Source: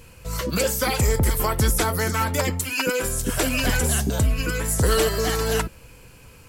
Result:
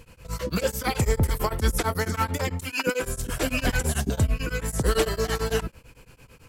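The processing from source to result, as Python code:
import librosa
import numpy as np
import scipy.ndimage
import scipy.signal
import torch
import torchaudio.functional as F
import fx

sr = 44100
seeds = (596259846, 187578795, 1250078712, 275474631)

y = fx.high_shelf(x, sr, hz=6000.0, db=-6.0)
y = fx.dmg_crackle(y, sr, seeds[0], per_s=37.0, level_db=-51.0)
y = y * np.abs(np.cos(np.pi * 9.0 * np.arange(len(y)) / sr))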